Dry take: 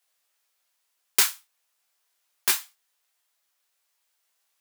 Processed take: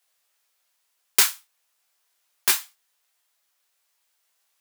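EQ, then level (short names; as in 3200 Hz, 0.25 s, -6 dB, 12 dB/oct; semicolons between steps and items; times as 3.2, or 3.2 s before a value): bell 280 Hz -3.5 dB 0.29 oct; +2.5 dB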